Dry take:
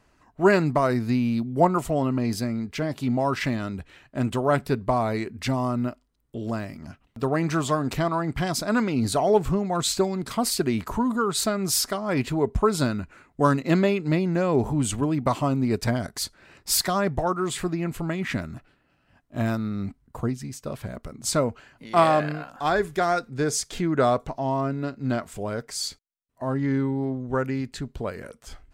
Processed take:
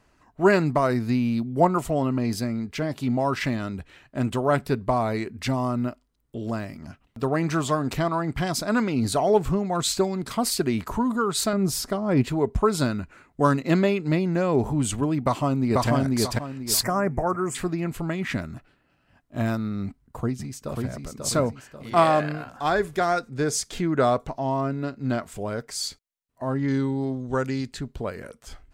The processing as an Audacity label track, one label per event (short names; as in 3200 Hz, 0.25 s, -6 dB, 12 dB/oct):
11.530000	12.240000	tilt shelf lows +6 dB, about 730 Hz
15.210000	15.890000	echo throw 0.49 s, feedback 30%, level -0.5 dB
16.830000	17.550000	Butterworth band-stop 3700 Hz, Q 0.92
19.850000	20.920000	echo throw 0.54 s, feedback 45%, level -4 dB
26.680000	27.720000	band shelf 5400 Hz +9.5 dB